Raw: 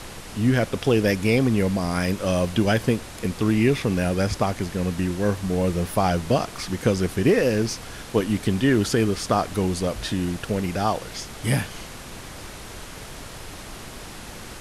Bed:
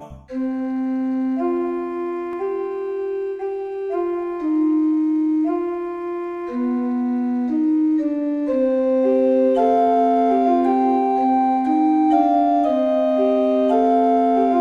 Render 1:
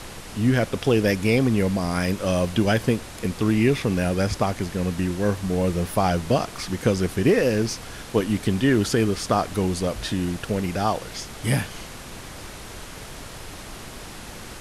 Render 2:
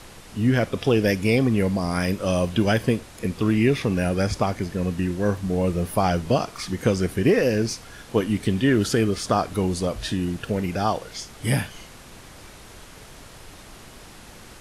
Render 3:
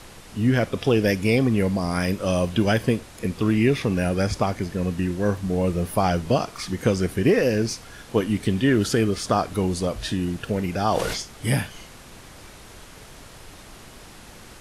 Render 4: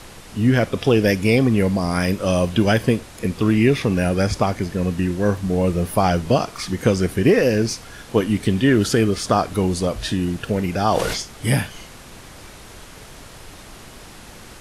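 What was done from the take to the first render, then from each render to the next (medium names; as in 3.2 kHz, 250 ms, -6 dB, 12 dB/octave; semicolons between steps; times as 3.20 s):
no audible change
noise print and reduce 6 dB
10.78–11.22 s: decay stretcher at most 35 dB/s
trim +3.5 dB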